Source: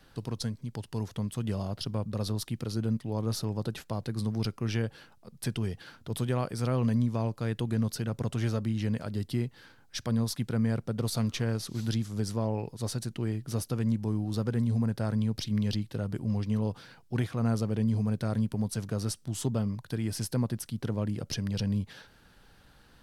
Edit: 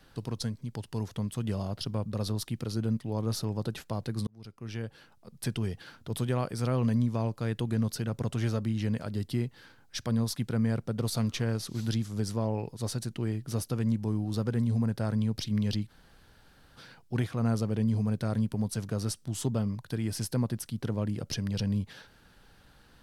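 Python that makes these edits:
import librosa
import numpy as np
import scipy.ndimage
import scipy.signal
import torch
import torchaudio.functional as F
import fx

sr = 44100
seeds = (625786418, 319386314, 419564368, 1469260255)

y = fx.edit(x, sr, fx.fade_in_span(start_s=4.27, length_s=1.1),
    fx.room_tone_fill(start_s=15.89, length_s=0.88, crossfade_s=0.04), tone=tone)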